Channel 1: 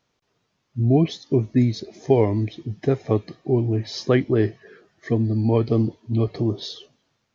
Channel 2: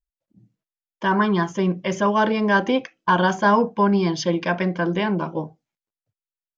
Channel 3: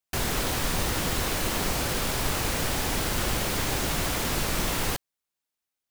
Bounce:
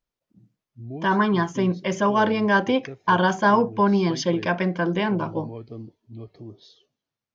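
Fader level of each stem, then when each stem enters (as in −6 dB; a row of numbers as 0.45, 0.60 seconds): −18.0 dB, −1.0 dB, muted; 0.00 s, 0.00 s, muted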